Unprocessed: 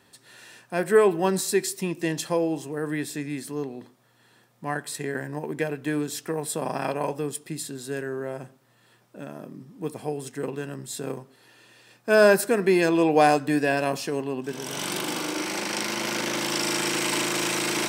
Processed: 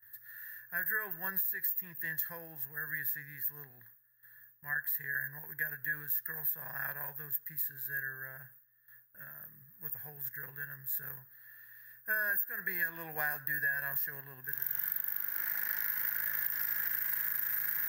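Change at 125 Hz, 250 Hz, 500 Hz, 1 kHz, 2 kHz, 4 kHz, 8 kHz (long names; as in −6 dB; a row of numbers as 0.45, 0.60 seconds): −17.5, −29.5, −30.0, −20.5, −5.0, −26.0, −21.5 decibels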